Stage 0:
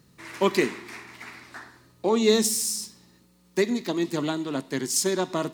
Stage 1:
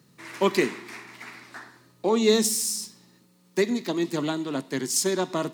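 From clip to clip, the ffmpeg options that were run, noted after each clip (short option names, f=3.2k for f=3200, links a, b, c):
-af "highpass=f=110:w=0.5412,highpass=f=110:w=1.3066"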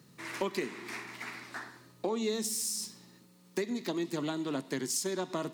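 -af "acompressor=threshold=-31dB:ratio=5"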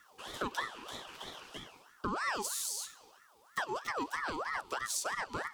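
-af "asuperstop=centerf=1100:order=12:qfactor=1.6,aeval=exprs='val(0)*sin(2*PI*1100*n/s+1100*0.45/3.1*sin(2*PI*3.1*n/s))':c=same"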